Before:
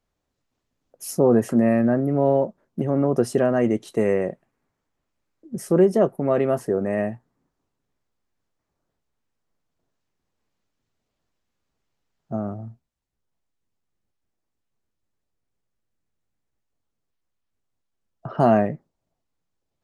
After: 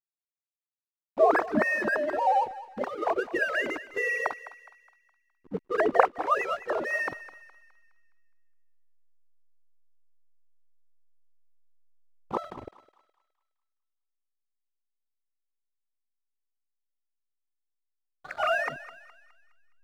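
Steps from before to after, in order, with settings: sine-wave speech; spectral gate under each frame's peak -10 dB weak; backlash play -46.5 dBFS; on a send: thinning echo 0.208 s, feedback 46%, high-pass 830 Hz, level -14 dB; on the sum: gain +9 dB

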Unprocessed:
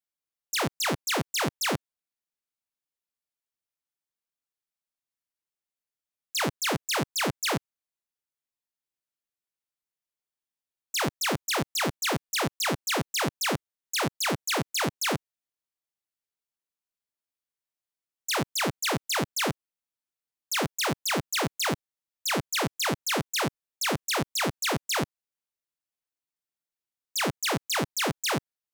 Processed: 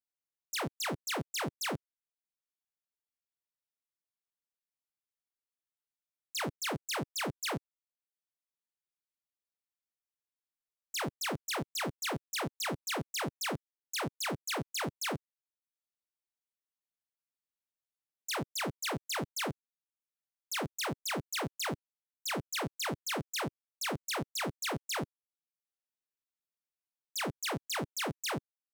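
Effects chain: reverb removal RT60 0.51 s; gain -7.5 dB

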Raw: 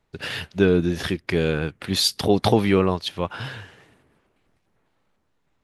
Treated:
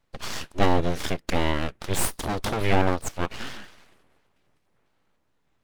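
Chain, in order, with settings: full-wave rectifier; 2.05–2.61 tube stage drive 12 dB, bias 0.25

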